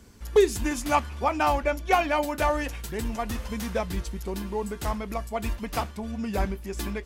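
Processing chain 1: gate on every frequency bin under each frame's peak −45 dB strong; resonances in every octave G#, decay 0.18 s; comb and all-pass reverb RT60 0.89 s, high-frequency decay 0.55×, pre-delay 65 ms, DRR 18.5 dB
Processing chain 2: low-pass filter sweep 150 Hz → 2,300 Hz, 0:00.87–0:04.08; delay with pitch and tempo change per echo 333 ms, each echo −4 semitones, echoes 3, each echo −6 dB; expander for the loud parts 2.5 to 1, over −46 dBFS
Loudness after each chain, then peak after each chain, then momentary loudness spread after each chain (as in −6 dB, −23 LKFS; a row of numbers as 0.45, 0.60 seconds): −37.5, −35.5 LKFS; −13.5, −10.0 dBFS; 16, 21 LU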